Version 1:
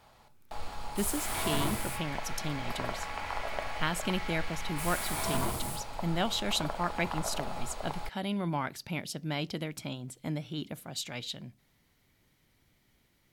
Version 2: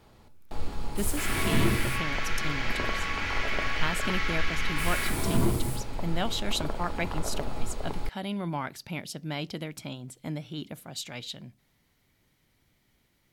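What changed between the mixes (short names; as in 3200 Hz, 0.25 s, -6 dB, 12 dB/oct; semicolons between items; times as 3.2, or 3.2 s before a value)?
first sound: add resonant low shelf 500 Hz +9.5 dB, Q 1.5; second sound +11.0 dB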